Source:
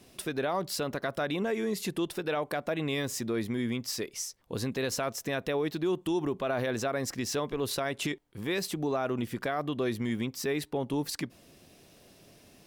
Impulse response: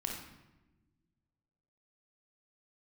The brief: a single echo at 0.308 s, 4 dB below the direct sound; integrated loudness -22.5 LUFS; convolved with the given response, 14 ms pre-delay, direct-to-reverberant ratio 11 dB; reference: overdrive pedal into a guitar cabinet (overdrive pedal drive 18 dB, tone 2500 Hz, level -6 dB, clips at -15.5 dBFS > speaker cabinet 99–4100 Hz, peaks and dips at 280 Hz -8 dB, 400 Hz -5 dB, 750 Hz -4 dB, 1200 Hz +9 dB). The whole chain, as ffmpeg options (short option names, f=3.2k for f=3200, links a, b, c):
-filter_complex "[0:a]aecho=1:1:308:0.631,asplit=2[a][b];[1:a]atrim=start_sample=2205,adelay=14[c];[b][c]afir=irnorm=-1:irlink=0,volume=-12.5dB[d];[a][d]amix=inputs=2:normalize=0,asplit=2[e][f];[f]highpass=f=720:p=1,volume=18dB,asoftclip=type=tanh:threshold=-15.5dB[g];[e][g]amix=inputs=2:normalize=0,lowpass=f=2.5k:p=1,volume=-6dB,highpass=99,equalizer=f=280:t=q:w=4:g=-8,equalizer=f=400:t=q:w=4:g=-5,equalizer=f=750:t=q:w=4:g=-4,equalizer=f=1.2k:t=q:w=4:g=9,lowpass=f=4.1k:w=0.5412,lowpass=f=4.1k:w=1.3066,volume=5dB"